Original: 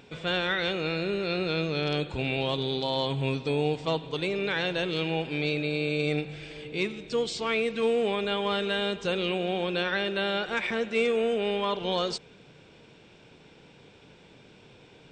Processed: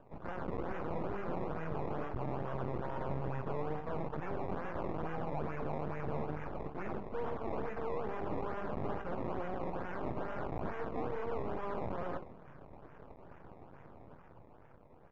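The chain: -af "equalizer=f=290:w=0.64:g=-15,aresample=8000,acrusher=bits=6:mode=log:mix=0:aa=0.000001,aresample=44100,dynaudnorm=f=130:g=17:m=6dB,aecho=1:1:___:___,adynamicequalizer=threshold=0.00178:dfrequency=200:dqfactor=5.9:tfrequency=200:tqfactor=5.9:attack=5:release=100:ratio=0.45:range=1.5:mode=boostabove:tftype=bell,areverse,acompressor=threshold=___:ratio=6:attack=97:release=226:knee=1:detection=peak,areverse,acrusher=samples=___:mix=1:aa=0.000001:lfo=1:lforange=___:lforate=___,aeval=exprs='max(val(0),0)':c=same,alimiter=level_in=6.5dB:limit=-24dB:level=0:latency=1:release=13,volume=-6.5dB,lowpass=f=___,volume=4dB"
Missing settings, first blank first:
112, 0.335, -36dB, 20, 20, 2.3, 1.2k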